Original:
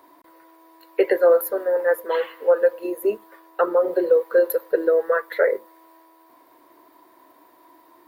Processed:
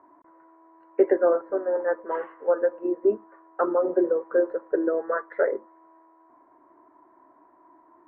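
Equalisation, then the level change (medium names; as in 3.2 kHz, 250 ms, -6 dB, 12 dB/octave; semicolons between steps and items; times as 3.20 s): low-pass 1.5 kHz 24 dB/octave; dynamic bell 260 Hz, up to +8 dB, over -35 dBFS, Q 1.2; peaking EQ 490 Hz -8.5 dB 0.22 oct; -2.5 dB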